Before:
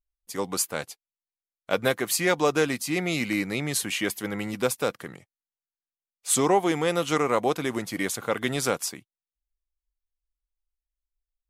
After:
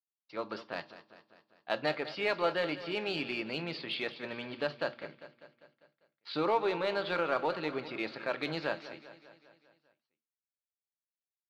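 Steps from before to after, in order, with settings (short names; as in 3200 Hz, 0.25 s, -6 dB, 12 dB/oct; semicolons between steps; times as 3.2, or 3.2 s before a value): gate -39 dBFS, range -31 dB; Chebyshev low-pass 4000 Hz, order 6; low shelf 210 Hz -7 dB; notches 60/120 Hz; pitch shift +2.5 st; in parallel at -8.5 dB: hard clip -23 dBFS, distortion -8 dB; on the sum: feedback echo 0.199 s, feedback 58%, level -14.5 dB; on a send at -12 dB: reverb RT60 0.25 s, pre-delay 3 ms; on the sum: gain -8.5 dB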